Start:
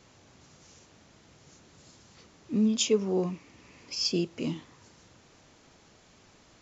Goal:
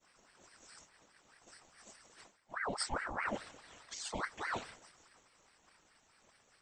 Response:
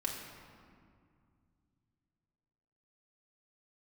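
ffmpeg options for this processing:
-af "agate=range=-33dB:threshold=-48dB:ratio=3:detection=peak,afftfilt=real='hypot(re,im)*cos(2*PI*random(0))':imag='hypot(re,im)*sin(2*PI*random(1))':win_size=512:overlap=0.75,areverse,acompressor=threshold=-45dB:ratio=16,areverse,superequalizer=6b=0.316:14b=0.398:15b=1.78,aeval=exprs='val(0)*sin(2*PI*1100*n/s+1100*0.65/4.8*sin(2*PI*4.8*n/s))':channel_layout=same,volume=13.5dB"

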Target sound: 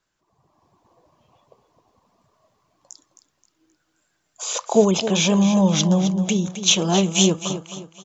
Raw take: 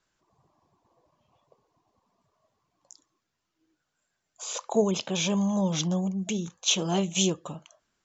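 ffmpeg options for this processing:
ffmpeg -i in.wav -af "dynaudnorm=framelen=220:gausssize=5:maxgain=8.5dB,aecho=1:1:264|528|792|1056:0.282|0.107|0.0407|0.0155" out.wav

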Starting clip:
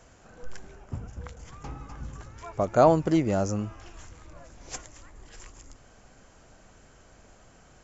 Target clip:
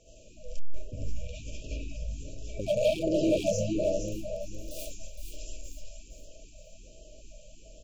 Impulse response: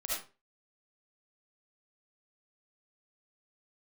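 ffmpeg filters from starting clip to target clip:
-filter_complex "[0:a]asettb=1/sr,asplit=3[link_01][link_02][link_03];[link_01]atrim=end=4.074[link_04];[link_02]atrim=start=4.07:end=4.83,asetpts=PTS-STARTPTS,afade=type=in:duration=0.004:curve=qsin,afade=type=out:start_time=0.756:duration=0.004:curve=qsin,aeval=exprs='(mod(75*val(0)+1,2)-1)/75':channel_layout=same[link_05];[link_03]atrim=start=4.826[link_06];[link_04][link_05]acrossfade=duration=0.004:curve1=hsin:curve2=qsin[link_07];[link_07][link_06]acrossfade=duration=0.004:curve1=qsin:curve2=hsin,aecho=1:1:464|928|1392|1856:0.422|0.135|0.0432|0.0138,asettb=1/sr,asplit=3[link_08][link_09][link_10];[link_08]atrim=end=2.664[link_11];[link_09]atrim=start=2.66:end=3.36,asetpts=PTS-STARTPTS,afade=type=in:duration=0.004:curve=qsin,afade=type=out:start_time=0.696:duration=0.004:curve=qsin,acompressor=threshold=-20dB:ratio=8[link_12];[link_10]atrim=start=3.356[link_13];[link_11][link_12]acrossfade=duration=0.004:curve1=hsin:curve2=qsin[link_14];[link_14][link_13]acrossfade=duration=0.004:curve1=qsin:curve2=hsin,equalizer=frequency=125:width_type=o:width=0.33:gain=-6,equalizer=frequency=200:width_type=o:width=0.33:gain=-5,equalizer=frequency=800:width_type=o:width=0.33:gain=7[link_15];[1:a]atrim=start_sample=2205[link_16];[link_15][link_16]afir=irnorm=-1:irlink=0,volume=19dB,asoftclip=hard,volume=-19dB,asettb=1/sr,asplit=3[link_17][link_18][link_19];[link_17]atrim=end=1.164[link_20];[link_18]atrim=start=1.16:end=1.97,asetpts=PTS-STARTPTS,afade=type=in:duration=0.004:curve=qsin,afade=type=out:start_time=0.806:duration=0.004:curve=qsin,equalizer=frequency=2100:width=0.93:gain=8.5[link_21];[link_19]atrim=start=1.966[link_22];[link_20][link_21]acrossfade=duration=0.004:curve1=hsin:curve2=qsin[link_23];[link_23][link_22]acrossfade=duration=0.004:curve1=qsin:curve2=hsin,afftfilt=real='re*(1-between(b*sr/4096,660,2300))':imag='im*(1-between(b*sr/4096,660,2300))':win_size=4096:overlap=0.75,afftfilt=real='re*(1-between(b*sr/1024,300*pow(1800/300,0.5+0.5*sin(2*PI*1.3*pts/sr))/1.41,300*pow(1800/300,0.5+0.5*sin(2*PI*1.3*pts/sr))*1.41))':imag='im*(1-between(b*sr/1024,300*pow(1800/300,0.5+0.5*sin(2*PI*1.3*pts/sr))/1.41,300*pow(1800/300,0.5+0.5*sin(2*PI*1.3*pts/sr))*1.41))':win_size=1024:overlap=0.75"

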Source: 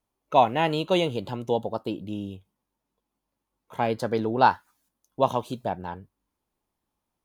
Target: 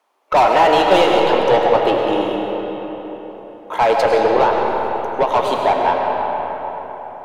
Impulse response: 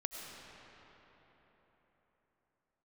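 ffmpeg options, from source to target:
-filter_complex "[0:a]highpass=500,asettb=1/sr,asplit=3[link_01][link_02][link_03];[link_01]atrim=end=4.134[link_04];[link_02]atrim=start=4.13:end=5.34,asetpts=PTS-STARTPTS,afade=type=in:duration=0.004:curve=qsin,afade=type=out:start_time=1.206:duration=0.004:curve=qsin,acompressor=threshold=-29dB:ratio=12[link_05];[link_03]atrim=start=5.336[link_06];[link_04][link_05]acrossfade=duration=0.004:curve1=hsin:curve2=qsin[link_07];[link_07][link_06]acrossfade=duration=0.004:curve1=qsin:curve2=hsin,asplit=2[link_08][link_09];[link_09]highpass=frequency=720:poles=1,volume=30dB,asoftclip=type=tanh:threshold=-5dB[link_10];[link_08][link_10]amix=inputs=2:normalize=0,lowpass=frequency=1200:poles=1,volume=-6dB[link_11];[1:a]atrim=start_sample=2205[link_12];[link_11][link_12]afir=irnorm=-1:irlink=0,volume=4dB"

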